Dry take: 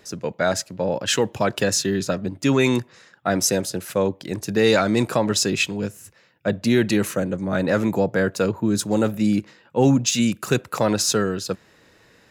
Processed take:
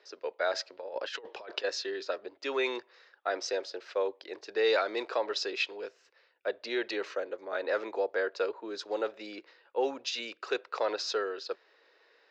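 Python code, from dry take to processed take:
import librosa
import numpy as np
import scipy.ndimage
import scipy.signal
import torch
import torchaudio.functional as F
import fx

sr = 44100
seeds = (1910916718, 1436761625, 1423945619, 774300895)

y = scipy.signal.sosfilt(scipy.signal.ellip(3, 1.0, 40, [410.0, 4800.0], 'bandpass', fs=sr, output='sos'), x)
y = fx.over_compress(y, sr, threshold_db=-28.0, ratio=-0.5, at=(0.53, 1.63), fade=0.02)
y = y * librosa.db_to_amplitude(-8.0)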